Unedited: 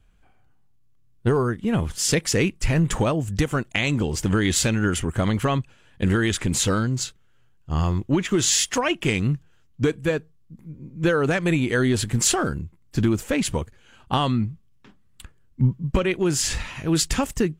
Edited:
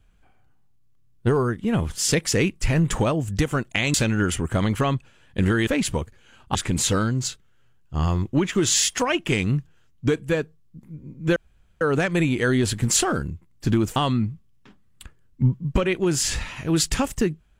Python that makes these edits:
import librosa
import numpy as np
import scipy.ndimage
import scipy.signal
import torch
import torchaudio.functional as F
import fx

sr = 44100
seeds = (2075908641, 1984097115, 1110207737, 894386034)

y = fx.edit(x, sr, fx.cut(start_s=3.94, length_s=0.64),
    fx.insert_room_tone(at_s=11.12, length_s=0.45),
    fx.move(start_s=13.27, length_s=0.88, to_s=6.31), tone=tone)